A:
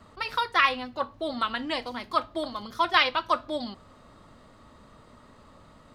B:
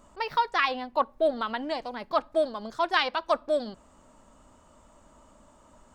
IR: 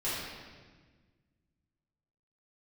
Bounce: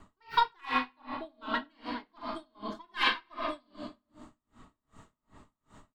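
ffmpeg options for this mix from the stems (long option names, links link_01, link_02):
-filter_complex "[0:a]lowpass=frequency=4100:width=0.5412,lowpass=frequency=4100:width=1.3066,aeval=exprs='0.398*(cos(1*acos(clip(val(0)/0.398,-1,1)))-cos(1*PI/2))+0.0178*(cos(6*acos(clip(val(0)/0.398,-1,1)))-cos(6*PI/2))':channel_layout=same,volume=-5.5dB,asplit=2[link_01][link_02];[link_02]volume=-7dB[link_03];[1:a]acrossover=split=1100[link_04][link_05];[link_04]aeval=exprs='val(0)*(1-0.5/2+0.5/2*cos(2*PI*1.5*n/s))':channel_layout=same[link_06];[link_05]aeval=exprs='val(0)*(1-0.5/2-0.5/2*cos(2*PI*1.5*n/s))':channel_layout=same[link_07];[link_06][link_07]amix=inputs=2:normalize=0,adelay=1.3,volume=-2dB,asplit=2[link_08][link_09];[link_09]volume=-5.5dB[link_10];[2:a]atrim=start_sample=2205[link_11];[link_03][link_10]amix=inputs=2:normalize=0[link_12];[link_12][link_11]afir=irnorm=-1:irlink=0[link_13];[link_01][link_08][link_13]amix=inputs=3:normalize=0,equalizer=frequency=540:width=5.8:gain=-15,aeval=exprs='val(0)*pow(10,-38*(0.5-0.5*cos(2*PI*2.6*n/s))/20)':channel_layout=same"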